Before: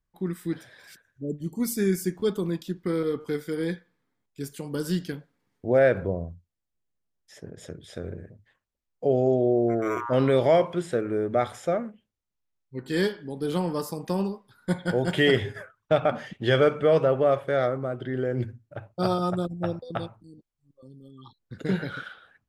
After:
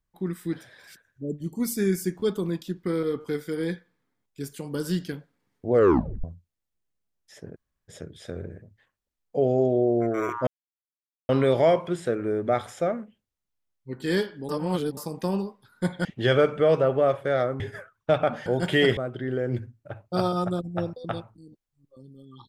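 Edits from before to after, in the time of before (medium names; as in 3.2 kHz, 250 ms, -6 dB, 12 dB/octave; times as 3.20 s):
5.72 s: tape stop 0.52 s
7.56 s: insert room tone 0.32 s
10.15 s: insert silence 0.82 s
13.35–13.83 s: reverse
14.91–15.42 s: swap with 16.28–17.83 s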